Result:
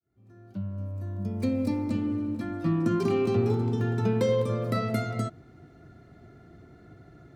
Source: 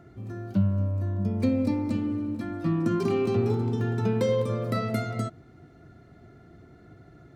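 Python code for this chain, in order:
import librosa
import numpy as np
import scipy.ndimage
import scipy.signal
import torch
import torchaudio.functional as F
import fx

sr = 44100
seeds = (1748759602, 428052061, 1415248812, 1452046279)

y = fx.fade_in_head(x, sr, length_s=2.12)
y = fx.high_shelf(y, sr, hz=6900.0, db=8.5, at=(0.78, 1.85))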